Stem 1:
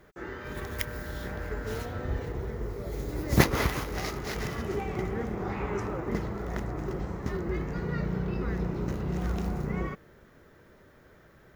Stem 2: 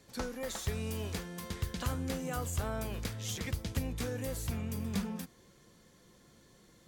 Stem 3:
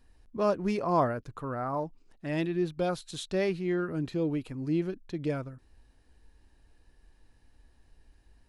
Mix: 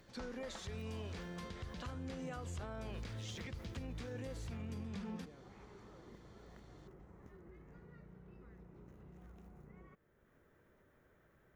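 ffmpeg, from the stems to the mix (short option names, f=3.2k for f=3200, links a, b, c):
-filter_complex "[0:a]equalizer=f=4.7k:w=1.8:g=-8,acompressor=mode=upward:threshold=-43dB:ratio=2.5,volume=-18.5dB[a];[1:a]lowpass=4.8k,volume=-2.5dB[b];[2:a]volume=-18.5dB[c];[a][c]amix=inputs=2:normalize=0,acompressor=threshold=-54dB:ratio=6,volume=0dB[d];[b][d]amix=inputs=2:normalize=0,alimiter=level_in=12.5dB:limit=-24dB:level=0:latency=1:release=92,volume=-12.5dB"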